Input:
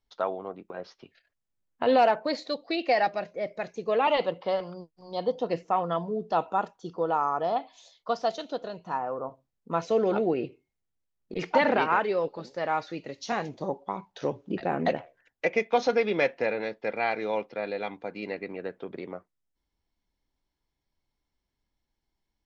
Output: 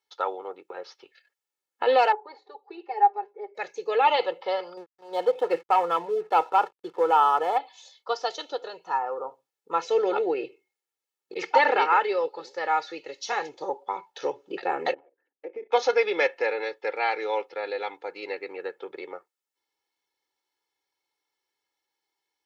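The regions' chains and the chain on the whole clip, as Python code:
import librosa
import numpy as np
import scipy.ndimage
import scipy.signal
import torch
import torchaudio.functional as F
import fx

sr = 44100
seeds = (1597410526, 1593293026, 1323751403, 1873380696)

y = fx.chain(x, sr, fx.double_bandpass(hz=590.0, octaves=1.0),
    fx.comb(ms=5.0, depth=0.68), at=(2.12, 3.55))
y = fx.chain(y, sr, fx.lowpass(hz=2800.0, slope=12),
    fx.leveller(passes=1),
    fx.backlash(play_db=-48.5), at=(4.77, 7.58))
y = fx.chain(y, sr, fx.level_steps(step_db=14),
    fx.transient(attack_db=4, sustain_db=11),
    fx.bandpass_q(hz=280.0, q=2.4), at=(14.94, 15.72))
y = scipy.signal.sosfilt(scipy.signal.bessel(2, 590.0, 'highpass', norm='mag', fs=sr, output='sos'), y)
y = y + 0.74 * np.pad(y, (int(2.3 * sr / 1000.0), 0))[:len(y)]
y = y * librosa.db_to_amplitude(2.5)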